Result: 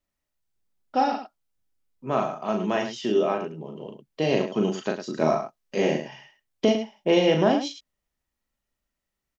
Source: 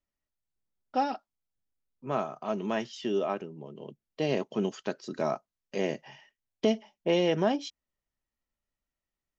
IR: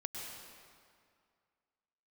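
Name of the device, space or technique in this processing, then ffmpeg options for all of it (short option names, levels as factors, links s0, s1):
slapback doubling: -filter_complex "[0:a]asettb=1/sr,asplit=3[s0][s1][s2];[s0]atrim=end=5.194[s3];[s1]atrim=start=5.19:end=5.98,asetpts=PTS-STARTPTS,afade=t=in:d=0.004:c=qsin,afade=t=out:st=0.786:d=0.004:c=qsin,asplit=2[s4][s5];[s5]adelay=25,volume=0.631[s6];[s4][s6]amix=inputs=2:normalize=0,atrim=end_sample=34839[s7];[s2]atrim=start=5.976[s8];[s3][s7]acrossfade=d=0.004:c1=hsin:c2=qsin[s9];[s9][s8]acrossfade=d=0.004:c1=qsin:c2=hsin,asplit=3[s10][s11][s12];[s11]adelay=38,volume=0.596[s13];[s12]adelay=105,volume=0.335[s14];[s10][s13][s14]amix=inputs=3:normalize=0,volume=1.68"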